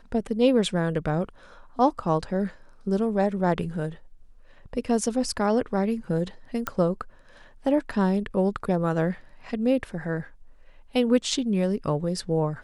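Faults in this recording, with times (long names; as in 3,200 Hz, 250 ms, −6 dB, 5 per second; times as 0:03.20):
0:06.67: click −14 dBFS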